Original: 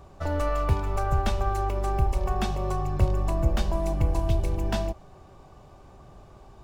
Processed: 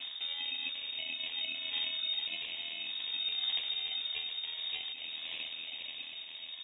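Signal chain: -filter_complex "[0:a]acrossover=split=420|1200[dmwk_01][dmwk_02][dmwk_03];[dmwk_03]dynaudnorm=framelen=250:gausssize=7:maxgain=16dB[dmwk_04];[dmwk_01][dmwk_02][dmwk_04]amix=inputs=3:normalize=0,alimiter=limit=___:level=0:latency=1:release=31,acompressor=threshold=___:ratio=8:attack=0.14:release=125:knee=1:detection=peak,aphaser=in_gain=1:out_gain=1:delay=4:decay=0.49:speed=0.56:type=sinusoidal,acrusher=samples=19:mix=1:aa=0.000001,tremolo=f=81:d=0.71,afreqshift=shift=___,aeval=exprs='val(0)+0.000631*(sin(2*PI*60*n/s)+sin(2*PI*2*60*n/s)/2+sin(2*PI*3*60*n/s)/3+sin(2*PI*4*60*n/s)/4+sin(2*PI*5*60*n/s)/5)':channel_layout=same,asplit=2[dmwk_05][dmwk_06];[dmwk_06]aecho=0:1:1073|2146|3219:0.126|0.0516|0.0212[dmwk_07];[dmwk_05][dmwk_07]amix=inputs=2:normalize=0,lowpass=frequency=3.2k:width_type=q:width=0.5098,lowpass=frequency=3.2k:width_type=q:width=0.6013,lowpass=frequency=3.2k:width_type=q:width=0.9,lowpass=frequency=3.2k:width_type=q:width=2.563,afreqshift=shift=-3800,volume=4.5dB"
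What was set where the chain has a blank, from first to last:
-15.5dB, -37dB, 56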